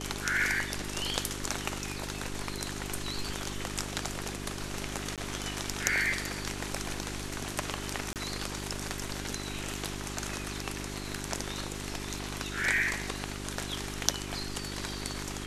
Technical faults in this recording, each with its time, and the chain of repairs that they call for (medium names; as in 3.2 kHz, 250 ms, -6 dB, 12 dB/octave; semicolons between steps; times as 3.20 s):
hum 50 Hz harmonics 8 -40 dBFS
5.16–5.18 s: dropout 17 ms
8.13–8.16 s: dropout 28 ms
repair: de-hum 50 Hz, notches 8; interpolate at 5.16 s, 17 ms; interpolate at 8.13 s, 28 ms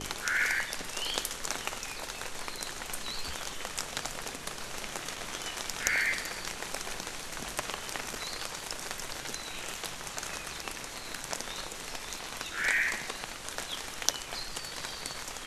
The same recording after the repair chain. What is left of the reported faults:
nothing left